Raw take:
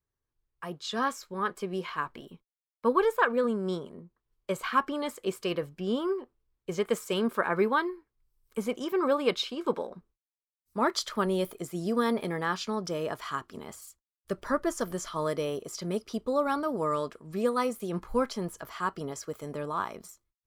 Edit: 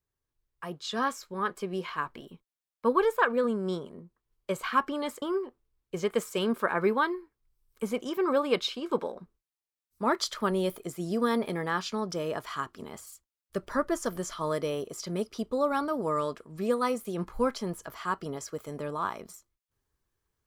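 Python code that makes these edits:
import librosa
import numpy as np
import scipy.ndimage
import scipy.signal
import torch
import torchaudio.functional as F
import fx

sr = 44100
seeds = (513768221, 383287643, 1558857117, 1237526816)

y = fx.edit(x, sr, fx.cut(start_s=5.22, length_s=0.75), tone=tone)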